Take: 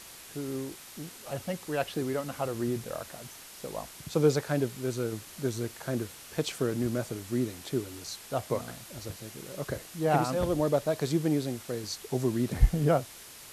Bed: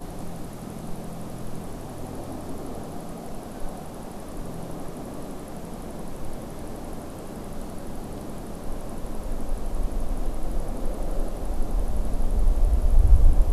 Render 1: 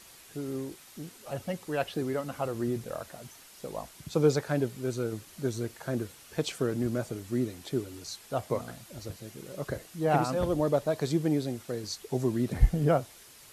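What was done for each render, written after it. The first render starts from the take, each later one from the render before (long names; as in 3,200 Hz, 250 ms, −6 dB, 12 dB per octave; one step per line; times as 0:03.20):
broadband denoise 6 dB, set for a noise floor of −48 dBFS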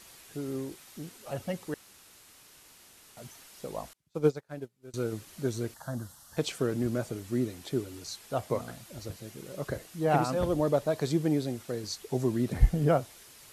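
0:01.74–0:03.17: fill with room tone
0:03.93–0:04.94: expander for the loud parts 2.5 to 1, over −40 dBFS
0:05.74–0:06.37: phaser with its sweep stopped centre 990 Hz, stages 4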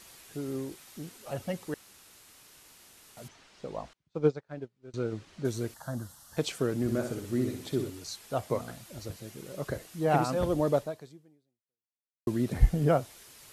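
0:03.28–0:05.45: high-frequency loss of the air 120 metres
0:06.82–0:07.90: flutter between parallel walls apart 10.7 metres, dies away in 0.57 s
0:10.78–0:12.27: fade out exponential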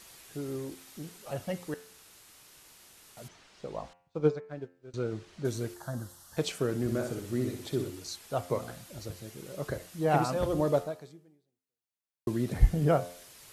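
parametric band 250 Hz −3 dB 0.28 octaves
hum removal 88.15 Hz, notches 34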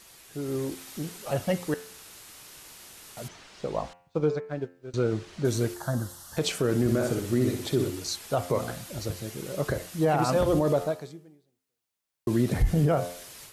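automatic gain control gain up to 8 dB
brickwall limiter −15 dBFS, peak gain reduction 11 dB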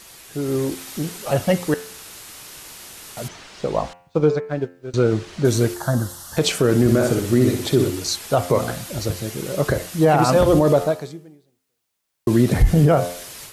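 level +8.5 dB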